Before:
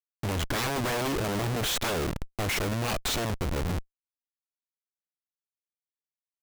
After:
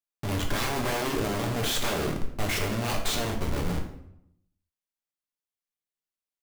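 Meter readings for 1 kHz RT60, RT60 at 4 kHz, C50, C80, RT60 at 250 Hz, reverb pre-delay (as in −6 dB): 0.70 s, 0.55 s, 7.5 dB, 10.5 dB, 0.90 s, 5 ms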